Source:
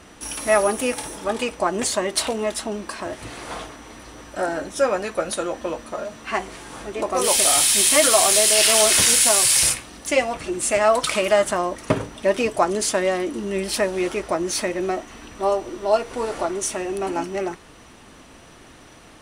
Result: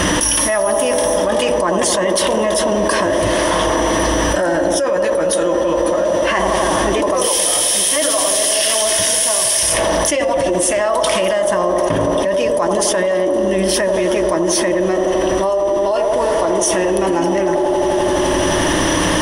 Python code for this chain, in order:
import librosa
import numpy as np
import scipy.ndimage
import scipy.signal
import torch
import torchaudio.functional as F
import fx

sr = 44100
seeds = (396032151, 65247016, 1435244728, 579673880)

p1 = fx.ripple_eq(x, sr, per_octave=1.2, db=9)
p2 = p1 + fx.echo_wet_bandpass(p1, sr, ms=85, feedback_pct=81, hz=490.0, wet_db=-5.5, dry=0)
p3 = fx.env_flatten(p2, sr, amount_pct=100)
y = p3 * librosa.db_to_amplitude(-5.5)